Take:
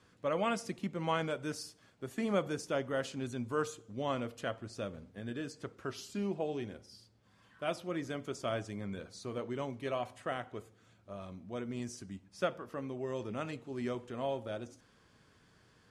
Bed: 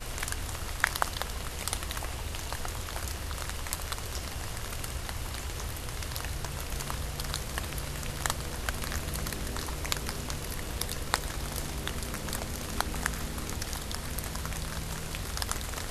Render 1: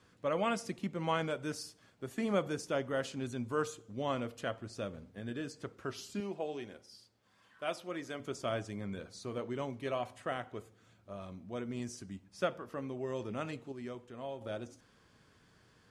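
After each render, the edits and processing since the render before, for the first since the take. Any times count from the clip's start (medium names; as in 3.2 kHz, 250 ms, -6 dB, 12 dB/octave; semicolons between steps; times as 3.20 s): 6.20–8.20 s: bass shelf 230 Hz -12 dB; 13.72–14.41 s: gain -6.5 dB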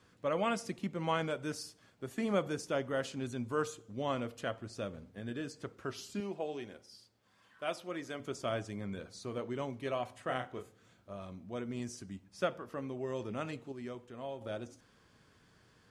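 10.25–11.12 s: doubling 31 ms -5.5 dB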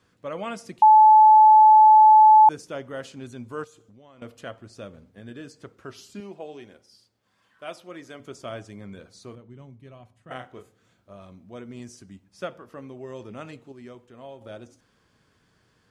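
0.82–2.49 s: bleep 864 Hz -9 dBFS; 3.64–4.22 s: compression, threshold -49 dBFS; 9.35–10.31 s: FFT filter 170 Hz 0 dB, 250 Hz -7 dB, 530 Hz -14 dB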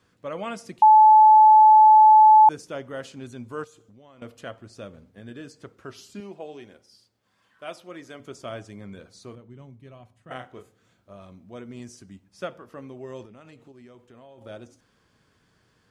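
13.25–14.38 s: compression 5:1, threshold -45 dBFS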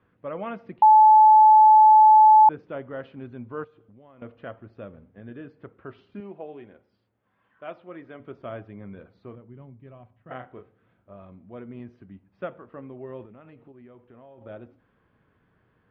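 Bessel low-pass 1.8 kHz, order 6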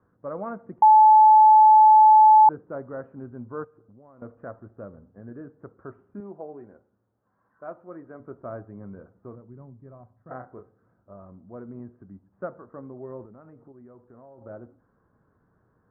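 steep low-pass 1.5 kHz 36 dB/octave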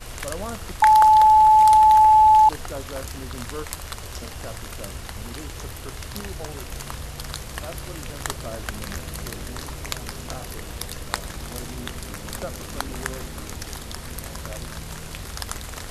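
add bed +1 dB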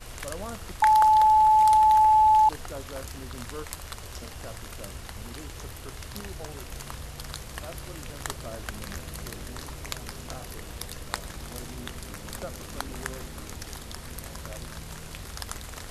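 trim -5 dB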